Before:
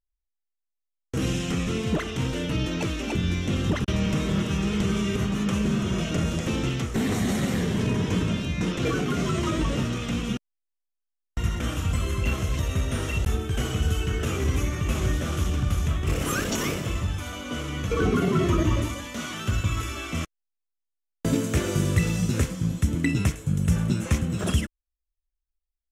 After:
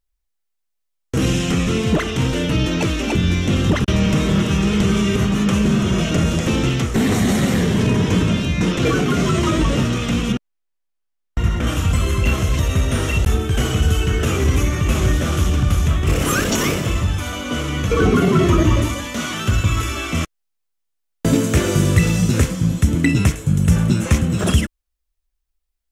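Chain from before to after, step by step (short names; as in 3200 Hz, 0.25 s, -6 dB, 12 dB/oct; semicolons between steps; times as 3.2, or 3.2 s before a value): 10.32–11.67 high shelf 3800 Hz -8.5 dB; in parallel at -10 dB: soft clip -23.5 dBFS, distortion -11 dB; on the sum: gain +6.5 dB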